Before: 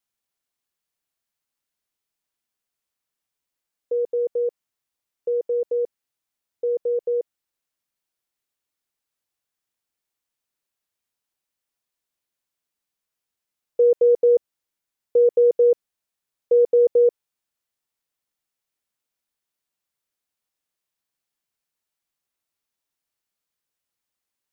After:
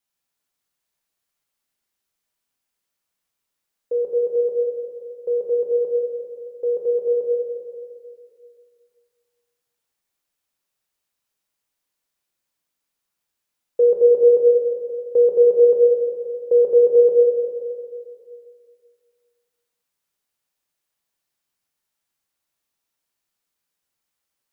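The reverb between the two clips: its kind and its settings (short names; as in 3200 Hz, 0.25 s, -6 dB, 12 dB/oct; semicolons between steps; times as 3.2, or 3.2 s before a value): plate-style reverb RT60 2.3 s, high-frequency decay 0.9×, DRR -2.5 dB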